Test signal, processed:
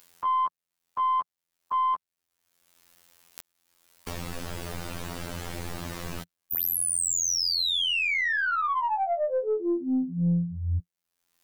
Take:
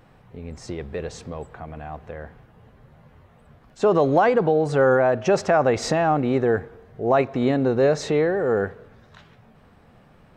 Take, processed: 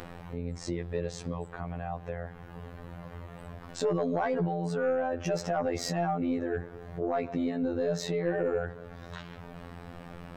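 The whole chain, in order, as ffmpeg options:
-af "adynamicequalizer=threshold=0.00631:dfrequency=140:dqfactor=3.4:tfrequency=140:tqfactor=3.4:attack=5:release=100:ratio=0.375:range=4:mode=boostabove:tftype=bell,alimiter=limit=-17dB:level=0:latency=1:release=70,afftfilt=real='hypot(re,im)*cos(PI*b)':imag='0':win_size=2048:overlap=0.75,aeval=exprs='(tanh(7.08*val(0)+0.1)-tanh(0.1))/7.08':c=same,acompressor=mode=upward:threshold=-29dB:ratio=2.5"

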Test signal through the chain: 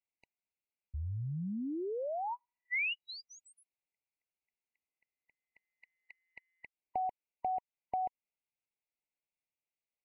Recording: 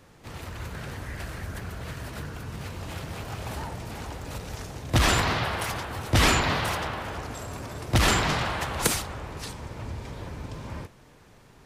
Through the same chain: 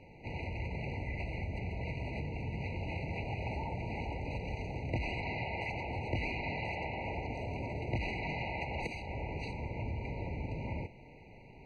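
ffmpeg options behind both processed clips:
-af "acompressor=threshold=-33dB:ratio=8,lowpass=f=2.4k:t=q:w=1.7,afftfilt=real='re*eq(mod(floor(b*sr/1024/970),2),0)':imag='im*eq(mod(floor(b*sr/1024/970),2),0)':win_size=1024:overlap=0.75"

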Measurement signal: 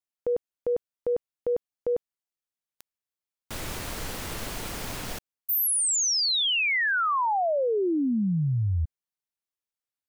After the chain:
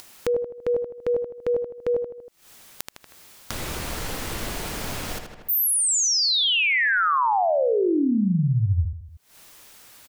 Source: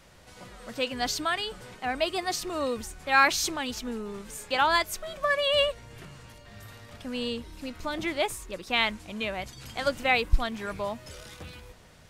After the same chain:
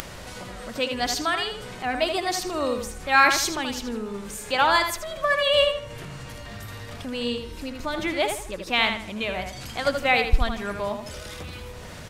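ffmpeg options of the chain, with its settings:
-filter_complex "[0:a]asplit=2[a][b];[b]adelay=79,lowpass=f=4.3k:p=1,volume=-6dB,asplit=2[c][d];[d]adelay=79,lowpass=f=4.3k:p=1,volume=0.33,asplit=2[e][f];[f]adelay=79,lowpass=f=4.3k:p=1,volume=0.33,asplit=2[g][h];[h]adelay=79,lowpass=f=4.3k:p=1,volume=0.33[i];[a][c][e][g][i]amix=inputs=5:normalize=0,acompressor=mode=upward:threshold=-34dB:ratio=4:attack=5.2:release=194:knee=2.83:detection=peak,volume=3dB"

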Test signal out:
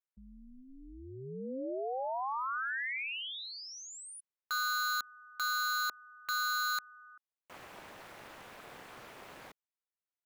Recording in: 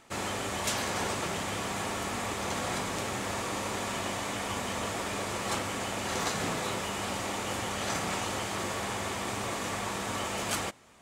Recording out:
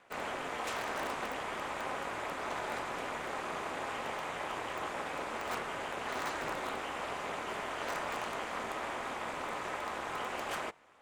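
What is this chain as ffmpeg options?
-filter_complex "[0:a]acrossover=split=340 2800:gain=0.126 1 0.224[a][b][c];[a][b][c]amix=inputs=3:normalize=0,asplit=2[d][e];[e]aeval=exprs='(mod(18.8*val(0)+1,2)-1)/18.8':c=same,volume=-5dB[f];[d][f]amix=inputs=2:normalize=0,aeval=exprs='val(0)*sin(2*PI*130*n/s)':c=same,volume=-3dB"

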